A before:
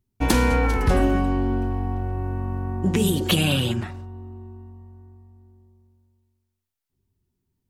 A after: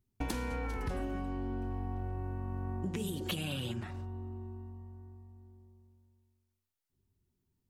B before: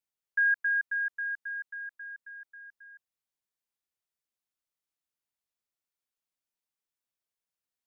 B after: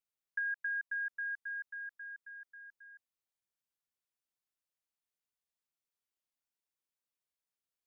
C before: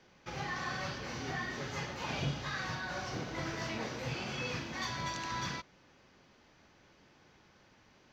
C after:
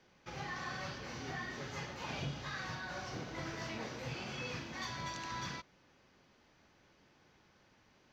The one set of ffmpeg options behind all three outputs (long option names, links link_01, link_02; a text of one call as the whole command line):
ffmpeg -i in.wav -af "acompressor=threshold=-30dB:ratio=6,volume=-4dB" out.wav